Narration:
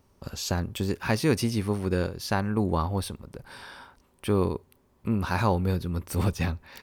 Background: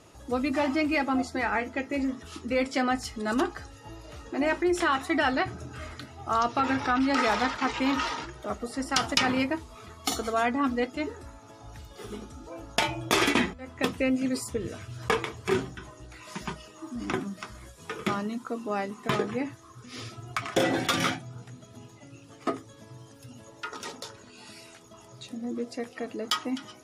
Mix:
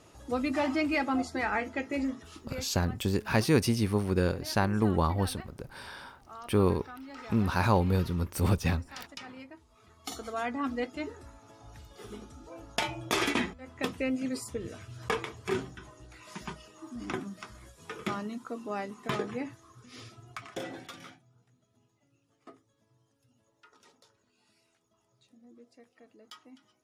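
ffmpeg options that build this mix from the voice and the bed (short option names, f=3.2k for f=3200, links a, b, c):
-filter_complex "[0:a]adelay=2250,volume=-0.5dB[a];[1:a]volume=13dB,afade=t=out:st=2.06:d=0.61:silence=0.125893,afade=t=in:st=9.56:d=1.24:silence=0.16788,afade=t=out:st=19.54:d=1.45:silence=0.133352[b];[a][b]amix=inputs=2:normalize=0"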